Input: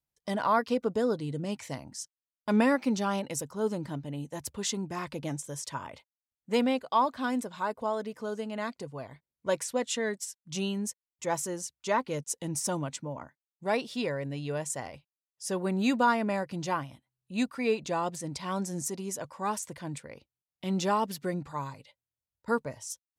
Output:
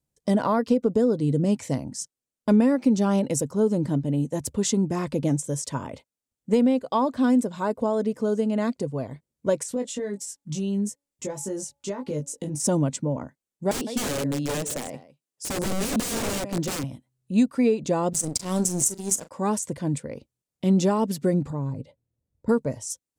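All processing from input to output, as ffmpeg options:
-filter_complex "[0:a]asettb=1/sr,asplit=3[a][b][c];[a]atrim=end=9.634[d];[b]atrim=start=9.63:end=12.6,asetpts=PTS-STARTPTS,afade=t=in:d=0.004:c=qsin,afade=t=out:st=2.966:d=0.004:c=qsin,acompressor=threshold=-38dB:ratio=12:attack=3.2:release=140:knee=1:detection=peak,asplit=2[e][f];[f]adelay=20,volume=-4dB[g];[e][g]amix=inputs=2:normalize=0,atrim=end_sample=130977,bandreject=f=282.3:t=h:w=4,bandreject=f=564.6:t=h:w=4,bandreject=f=846.9:t=h:w=4,bandreject=f=1.1292k:t=h:w=4[h];[c]atrim=start=12.596[i];[d][h]acrossfade=d=0.004:c1=hsin:c2=qsin[j];[j][i]acrossfade=d=0.004:c1=qsin:c2=hsin,asettb=1/sr,asplit=3[k][l][m];[k]atrim=end=13.714[n];[l]atrim=start=13.71:end=16.84,asetpts=PTS-STARTPTS,afade=t=in:d=0.004:c=qsin,afade=t=out:st=3.126:d=0.004:c=qsin,highpass=170,aecho=1:1:158:0.15,atrim=end_sample=138033,aeval=exprs='(mod(29.9*val(0)+1,2)-1)/29.9':c=same[o];[m]atrim=start=16.836[p];[n][o]acrossfade=d=0.004:c1=hsin:c2=qsin[q];[q][p]acrossfade=d=0.004:c1=qsin:c2=hsin,asettb=1/sr,asplit=3[r][s][t];[r]atrim=end=18.134[u];[s]atrim=start=18.13:end=19.31,asetpts=PTS-STARTPTS,afade=t=in:d=0.004:c=qsin,afade=t=out:st=1.176:d=0.004:c=qsin,bass=f=250:g=2,treble=f=4k:g=14,aeval=exprs='sgn(val(0))*max(abs(val(0))-0.0158,0)':c=same,asplit=2[v][w];[w]adelay=38,volume=-14dB[x];[v][x]amix=inputs=2:normalize=0,atrim=end_sample=52038[y];[t]atrim=start=19.306[z];[u][y]acrossfade=d=0.004:c1=hsin:c2=qsin[aa];[aa][z]acrossfade=d=0.004:c1=qsin:c2=hsin,asettb=1/sr,asplit=3[ab][ac][ad];[ab]atrim=end=21.504[ae];[ac]atrim=start=21.5:end=22.49,asetpts=PTS-STARTPTS,afade=t=in:d=0.004:c=qsin,afade=t=out:st=0.986:d=0.004:c=qsin,tiltshelf=f=920:g=9,acompressor=threshold=-42dB:ratio=2:attack=3.2:release=140:knee=1:detection=peak[af];[ad]atrim=start=22.486[ag];[ae][af]acrossfade=d=0.004:c1=hsin:c2=qsin[ah];[ah][ag]acrossfade=d=0.004:c1=qsin:c2=hsin,equalizer=f=125:t=o:w=1:g=3,equalizer=f=250:t=o:w=1:g=8,equalizer=f=500:t=o:w=1:g=8,equalizer=f=8k:t=o:w=1:g=8,acompressor=threshold=-20dB:ratio=6,lowshelf=f=230:g=9.5"

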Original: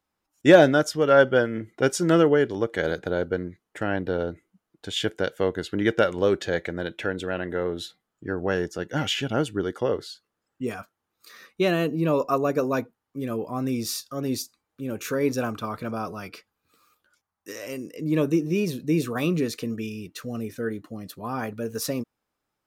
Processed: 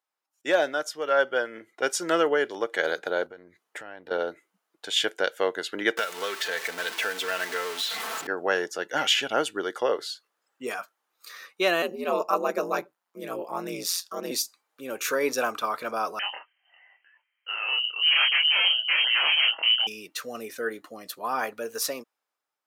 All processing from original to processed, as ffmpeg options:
-filter_complex "[0:a]asettb=1/sr,asplit=3[a][b][c];[a]atrim=end=3.264[d];[b]atrim=start=3.26:end=4.11,asetpts=PTS-STARTPTS,afade=t=in:d=0.004:c=qsin,afade=t=out:st=0.846:d=0.004:c=qsin,equalizer=f=65:w=0.57:g=12.5,acompressor=threshold=-36dB:ratio=8:attack=3.2:release=140:knee=1:detection=peak[e];[c]atrim=start=4.106[f];[d][e]acrossfade=d=0.004:c1=hsin:c2=qsin[g];[g][f]acrossfade=d=0.004:c1=qsin:c2=hsin,asettb=1/sr,asplit=3[h][i][j];[h]atrim=end=5.974[k];[i]atrim=start=5.97:end=8.27,asetpts=PTS-STARTPTS,afade=t=in:d=0.004:c=qsin,afade=t=out:st=2.296:d=0.004:c=qsin,aeval=exprs='val(0)+0.5*0.0335*sgn(val(0))':c=same,acrossover=split=1200|5300[l][m][n];[l]acompressor=threshold=-34dB:ratio=4[o];[m]acompressor=threshold=-33dB:ratio=4[p];[n]acompressor=threshold=-45dB:ratio=4[q];[o][p][q]amix=inputs=3:normalize=0,aecho=1:1:4.5:0.55,atrim=end_sample=101430[r];[j]atrim=start=8.266[s];[k][r]acrossfade=d=0.004:c1=hsin:c2=qsin[t];[t][s]acrossfade=d=0.004:c1=qsin:c2=hsin,asettb=1/sr,asplit=3[u][v][w];[u]atrim=end=11.824[x];[v]atrim=start=11.82:end=14.31,asetpts=PTS-STARTPTS,afade=t=in:d=0.004:c=qsin,afade=t=out:st=2.486:d=0.004:c=qsin,aeval=exprs='val(0)*sin(2*PI*88*n/s)':c=same,highpass=f=150:t=q:w=1.7[y];[w]atrim=start=14.306[z];[x][y]acrossfade=d=0.004:c1=hsin:c2=qsin[aa];[aa][z]acrossfade=d=0.004:c1=qsin:c2=hsin,asettb=1/sr,asplit=3[ab][ac][ad];[ab]atrim=end=16.194[ae];[ac]atrim=start=16.19:end=19.87,asetpts=PTS-STARTPTS,afade=t=in:d=0.004:c=qsin,afade=t=out:st=3.676:d=0.004:c=qsin,aeval=exprs='0.0631*(abs(mod(val(0)/0.0631+3,4)-2)-1)':c=same,asplit=2[af][ag];[ag]adelay=26,volume=-2dB[ah];[af][ah]amix=inputs=2:normalize=0,atrim=end_sample=162288,lowpass=f=2.7k:t=q:w=0.5098,lowpass=f=2.7k:t=q:w=0.6013,lowpass=f=2.7k:t=q:w=0.9,lowpass=f=2.7k:t=q:w=2.563,afreqshift=-3200[ai];[ad]atrim=start=19.866[aj];[ae][ai]acrossfade=d=0.004:c1=hsin:c2=qsin[ak];[ak][aj]acrossfade=d=0.004:c1=qsin:c2=hsin,highpass=600,dynaudnorm=f=190:g=11:m=11dB,volume=-5.5dB"

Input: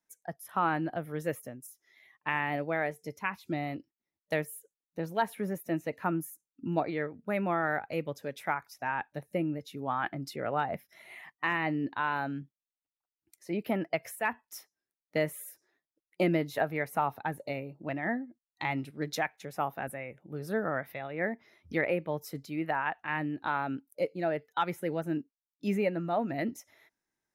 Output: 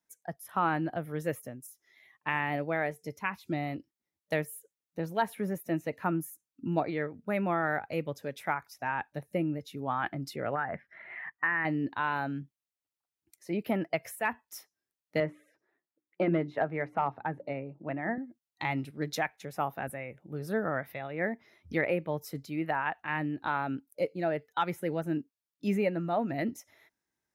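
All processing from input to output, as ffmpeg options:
-filter_complex "[0:a]asettb=1/sr,asplit=3[a][b][c];[a]atrim=end=10.554[d];[b]atrim=start=10.55:end=11.65,asetpts=PTS-STARTPTS,afade=t=in:d=0.004:c=qsin,afade=t=out:st=1.096:d=0.004:c=qsin,acompressor=threshold=-34dB:ratio=2.5:attack=3.2:release=140:knee=1:detection=peak,lowpass=f=1.7k:t=q:w=4.1[e];[c]atrim=start=11.646[f];[d][e]acrossfade=d=0.004:c1=hsin:c2=qsin[g];[g][f]acrossfade=d=0.004:c1=qsin:c2=hsin,asettb=1/sr,asplit=3[h][i][j];[h]atrim=end=15.204[k];[i]atrim=start=15.2:end=18.18,asetpts=PTS-STARTPTS,afade=t=in:d=0.004:c=qsin,afade=t=out:st=2.976:d=0.004:c=qsin,bandreject=f=60:t=h:w=6,bandreject=f=120:t=h:w=6,bandreject=f=180:t=h:w=6,bandreject=f=240:t=h:w=6,bandreject=f=300:t=h:w=6,bandreject=f=360:t=h:w=6,asoftclip=type=hard:threshold=-19.5dB,highpass=120,lowpass=2k[l];[j]atrim=start=18.176[m];[k][l]acrossfade=d=0.004:c1=hsin:c2=qsin[n];[n][m]acrossfade=d=0.004:c1=qsin:c2=hsin,highpass=56,lowshelf=f=74:g=9.5"

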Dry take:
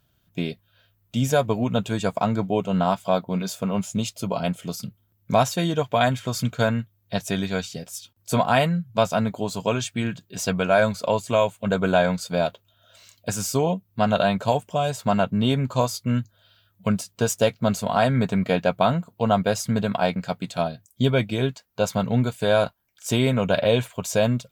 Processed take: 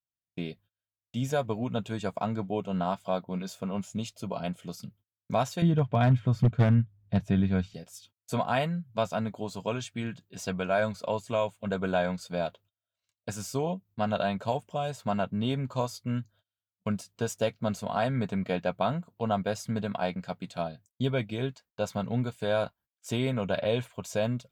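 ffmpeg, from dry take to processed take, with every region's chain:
-filter_complex "[0:a]asettb=1/sr,asplit=3[a][b][c];[a]atrim=end=5.624[d];[b]atrim=start=5.62:end=7.74,asetpts=PTS-STARTPTS,afade=t=in:d=0.004:c=qsin,afade=t=out:st=2.116:d=0.004:c=qsin,bass=f=250:g=14,treble=f=4k:g=-14,aeval=exprs='0.473*(abs(mod(val(0)/0.473+3,4)-2)-1)':c=same[e];[c]atrim=start=7.736[f];[d][e]acrossfade=d=0.004:c1=hsin:c2=qsin[g];[g][f]acrossfade=d=0.004:c1=qsin:c2=hsin,agate=range=-30dB:threshold=-47dB:ratio=16:detection=peak,highshelf=f=6.4k:g=-6.5,volume=-8dB"

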